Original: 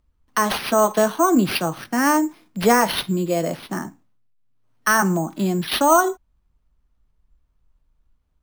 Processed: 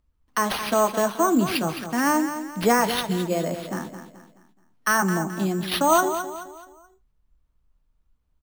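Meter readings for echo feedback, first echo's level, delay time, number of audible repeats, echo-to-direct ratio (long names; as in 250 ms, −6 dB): 39%, −10.0 dB, 214 ms, 4, −9.5 dB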